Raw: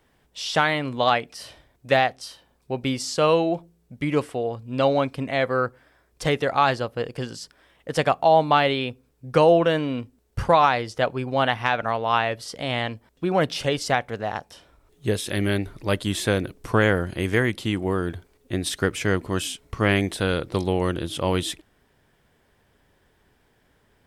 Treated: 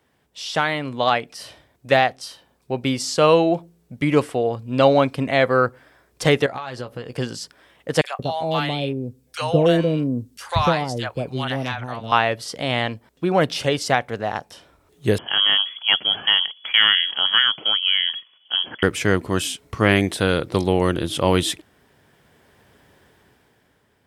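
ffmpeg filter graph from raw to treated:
-filter_complex "[0:a]asettb=1/sr,asplit=3[s0][s1][s2];[s0]atrim=end=6.464[s3];[s1]atrim=start=6.46:end=7.13,asetpts=PTS-STARTPTS,afade=t=in:d=0.004:c=qsin,afade=t=out:st=0.666:d=0.004:c=qsin,acompressor=threshold=0.0224:ratio=8:attack=3.2:release=140:knee=1:detection=peak,asplit=2[s4][s5];[s5]adelay=16,volume=0.398[s6];[s4][s6]amix=inputs=2:normalize=0,atrim=end_sample=29547[s7];[s2]atrim=start=7.126[s8];[s3][s7]acrossfade=d=0.004:c1=hsin:c2=qsin[s9];[s9][s8]acrossfade=d=0.004:c1=qsin:c2=hsin,asettb=1/sr,asplit=3[s10][s11][s12];[s10]atrim=end=8.014[s13];[s11]atrim=start=8.01:end=12.12,asetpts=PTS-STARTPTS,afade=t=in:d=0.004:c=qsin,afade=t=out:st=4.106:d=0.004:c=qsin,equalizer=f=930:w=0.37:g=-9.5,acrossover=split=720|2200[s14][s15][s16];[s15]adelay=30[s17];[s14]adelay=180[s18];[s18][s17][s16]amix=inputs=3:normalize=0,atrim=end_sample=181251[s19];[s12]atrim=start=12.116[s20];[s13][s19]acrossfade=d=0.004:c1=hsin:c2=qsin[s21];[s21][s20]acrossfade=d=0.004:c1=qsin:c2=hsin,asettb=1/sr,asplit=3[s22][s23][s24];[s22]atrim=end=15.184[s25];[s23]atrim=start=15.18:end=18.83,asetpts=PTS-STARTPTS,afade=t=in:d=0.004:c=qsin,afade=t=out:st=3.646:d=0.004:c=qsin,aeval=exprs='clip(val(0),-1,0.141)':c=same,lowpass=f=2900:t=q:w=0.5098,lowpass=f=2900:t=q:w=0.6013,lowpass=f=2900:t=q:w=0.9,lowpass=f=2900:t=q:w=2.563,afreqshift=-3400,highpass=110[s26];[s24]atrim=start=18.826[s27];[s25][s26]acrossfade=d=0.004:c1=hsin:c2=qsin[s28];[s28][s27]acrossfade=d=0.004:c1=qsin:c2=hsin,highpass=79,dynaudnorm=f=200:g=11:m=3.76,volume=0.891"

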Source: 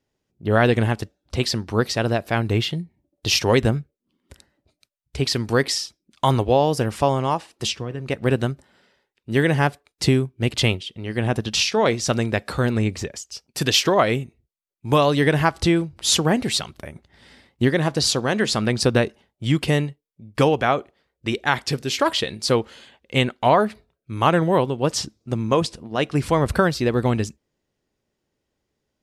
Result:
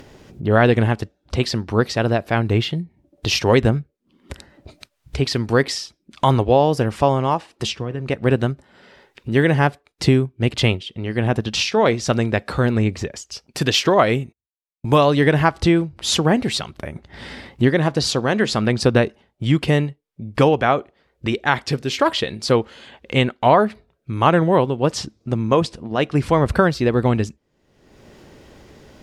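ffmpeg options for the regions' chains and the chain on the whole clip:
-filter_complex "[0:a]asettb=1/sr,asplit=3[s0][s1][s2];[s0]atrim=end=13.904[s3];[s1]atrim=start=13.9:end=15.05,asetpts=PTS-STARTPTS,afade=t=in:d=0.004:c=qsin,afade=t=out:st=1.146:d=0.004:c=qsin,agate=range=0.0141:threshold=0.00282:ratio=16:release=100:detection=peak,equalizer=f=11000:t=o:w=1.8:g=3.5[s4];[s2]atrim=start=15.046[s5];[s3][s4]acrossfade=d=0.004:c1=hsin:c2=qsin[s6];[s6][s5]acrossfade=d=0.004:c1=qsin:c2=hsin,acompressor=mode=upward:threshold=0.0631:ratio=2.5,aemphasis=mode=reproduction:type=cd,volume=1.33"

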